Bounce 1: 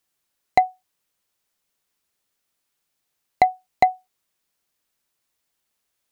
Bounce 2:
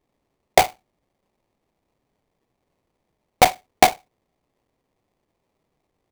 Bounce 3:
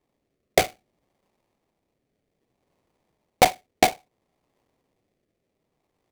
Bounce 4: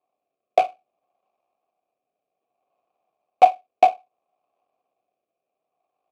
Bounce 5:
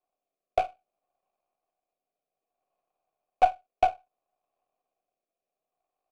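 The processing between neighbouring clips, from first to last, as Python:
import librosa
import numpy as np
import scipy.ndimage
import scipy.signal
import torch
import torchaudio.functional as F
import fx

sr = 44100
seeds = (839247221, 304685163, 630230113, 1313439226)

y1 = fx.sample_hold(x, sr, seeds[0], rate_hz=1500.0, jitter_pct=20)
y1 = y1 * librosa.db_to_amplitude(2.5)
y2 = fx.low_shelf(y1, sr, hz=71.0, db=-6.0)
y2 = fx.rotary(y2, sr, hz=0.6)
y2 = y2 * librosa.db_to_amplitude(2.0)
y3 = fx.vowel_filter(y2, sr, vowel='a')
y3 = y3 * librosa.db_to_amplitude(7.5)
y4 = np.where(y3 < 0.0, 10.0 ** (-3.0 / 20.0) * y3, y3)
y4 = y4 * librosa.db_to_amplitude(-6.5)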